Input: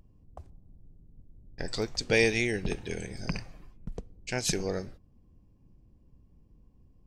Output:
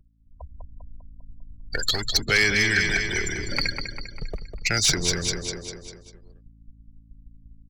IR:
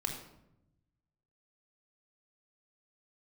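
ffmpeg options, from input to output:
-filter_complex "[0:a]afftfilt=real='re*gte(hypot(re,im),0.0158)':imag='im*gte(hypot(re,im),0.0158)':win_size=1024:overlap=0.75,acrossover=split=510|2500[s0][s1][s2];[s0]asoftclip=type=hard:threshold=0.02[s3];[s3][s1][s2]amix=inputs=3:normalize=0,aphaser=in_gain=1:out_gain=1:delay=3.4:decay=0.49:speed=0.44:type=sinusoidal,aecho=1:1:183|366|549|732|915|1098:0.335|0.171|0.0871|0.0444|0.0227|0.0116,agate=range=0.00178:threshold=0.00141:ratio=16:detection=peak,aeval=exprs='val(0)+0.001*(sin(2*PI*60*n/s)+sin(2*PI*2*60*n/s)/2+sin(2*PI*3*60*n/s)/3+sin(2*PI*4*60*n/s)/4+sin(2*PI*5*60*n/s)/5)':c=same,highshelf=f=2400:g=11.5,acrossover=split=220|1300[s4][s5][s6];[s4]acompressor=threshold=0.0178:ratio=4[s7];[s5]acompressor=threshold=0.00891:ratio=4[s8];[s6]acompressor=threshold=0.0501:ratio=4[s9];[s7][s8][s9]amix=inputs=3:normalize=0,asoftclip=type=tanh:threshold=0.1,adynamicequalizer=threshold=0.00398:dfrequency=1700:dqfactor=3.1:tfrequency=1700:tqfactor=3.1:attack=5:release=100:ratio=0.375:range=2.5:mode=boostabove:tftype=bell,asetrate=40517,aresample=44100,dynaudnorm=f=110:g=9:m=4.22,volume=0.631"

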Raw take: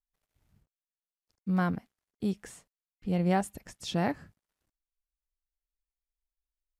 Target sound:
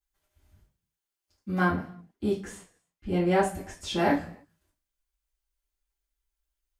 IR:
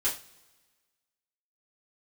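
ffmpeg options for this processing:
-filter_complex "[0:a]asettb=1/sr,asplit=3[s0][s1][s2];[s0]atrim=end=1.624[s3];[s1]atrim=start=1.62:end=3.98,asetpts=PTS-STARTPTS,afade=t=in:d=0.004:c=qsin,afade=t=out:st=2.356:d=0.004:c=qsin,highshelf=f=4100:g=-6[s4];[s2]atrim=start=3.976[s5];[s3][s4]acrossfade=d=0.004:c1=hsin:c2=qsin[s6];[s6][s5]acrossfade=d=0.004:c1=qsin:c2=hsin[s7];[1:a]atrim=start_sample=2205,afade=t=out:st=0.38:d=0.01,atrim=end_sample=17199[s8];[s7][s8]afir=irnorm=-1:irlink=0"

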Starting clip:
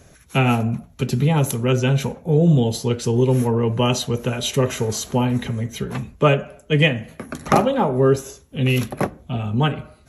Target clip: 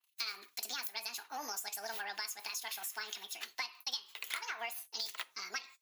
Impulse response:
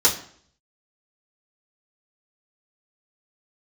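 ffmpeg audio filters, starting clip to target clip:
-filter_complex "[0:a]agate=range=0.0562:threshold=0.00562:ratio=16:detection=peak,aeval=exprs='0.841*(cos(1*acos(clip(val(0)/0.841,-1,1)))-cos(1*PI/2))+0.0133*(cos(7*acos(clip(val(0)/0.841,-1,1)))-cos(7*PI/2))':c=same,highpass=1500,acompressor=threshold=0.0158:ratio=6,asplit=2[s0][s1];[s1]aderivative[s2];[1:a]atrim=start_sample=2205[s3];[s2][s3]afir=irnorm=-1:irlink=0,volume=0.0891[s4];[s0][s4]amix=inputs=2:normalize=0,asetrate=76440,aresample=44100,adynamicequalizer=threshold=0.00355:dfrequency=4400:dqfactor=0.7:tfrequency=4400:tqfactor=0.7:attack=5:release=100:ratio=0.375:range=2:mode=cutabove:tftype=highshelf"

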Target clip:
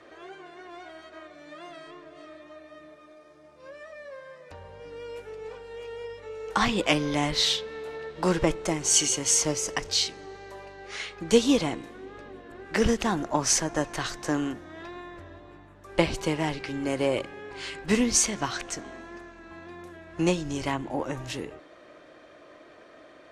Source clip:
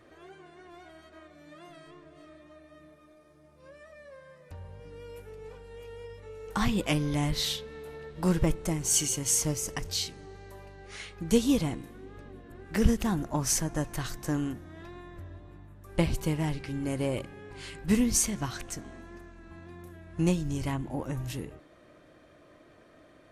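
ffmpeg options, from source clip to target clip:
-filter_complex "[0:a]acrossover=split=300 8000:gain=0.224 1 0.0794[s0][s1][s2];[s0][s1][s2]amix=inputs=3:normalize=0,volume=2.37"

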